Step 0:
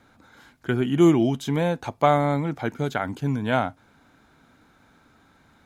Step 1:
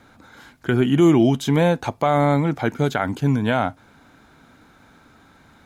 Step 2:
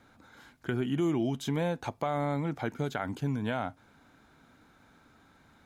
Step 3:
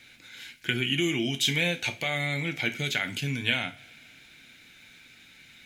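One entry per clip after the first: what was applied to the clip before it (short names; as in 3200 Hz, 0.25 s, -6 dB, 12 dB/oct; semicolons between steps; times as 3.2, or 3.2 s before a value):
limiter -13 dBFS, peak gain reduction 9 dB; gain +6 dB
compressor 2:1, threshold -20 dBFS, peak gain reduction 5.5 dB; gain -9 dB
resonant high shelf 1600 Hz +14 dB, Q 3; on a send at -6 dB: reverb, pre-delay 3 ms; on the sum: gain -2 dB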